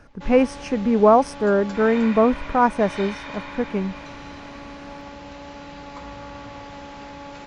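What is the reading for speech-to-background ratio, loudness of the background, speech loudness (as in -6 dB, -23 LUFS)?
16.5 dB, -36.5 LUFS, -20.0 LUFS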